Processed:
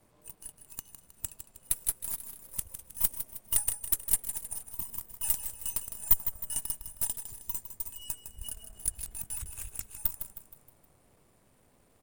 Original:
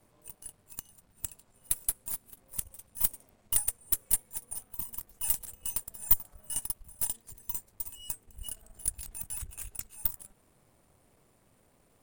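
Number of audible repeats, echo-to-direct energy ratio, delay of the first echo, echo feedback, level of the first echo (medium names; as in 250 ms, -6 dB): 4, -9.0 dB, 157 ms, 45%, -10.0 dB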